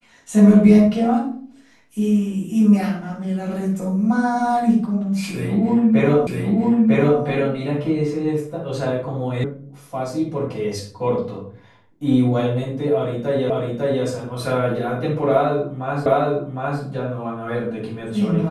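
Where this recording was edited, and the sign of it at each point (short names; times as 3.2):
6.27 repeat of the last 0.95 s
9.44 sound cut off
13.5 repeat of the last 0.55 s
16.06 repeat of the last 0.76 s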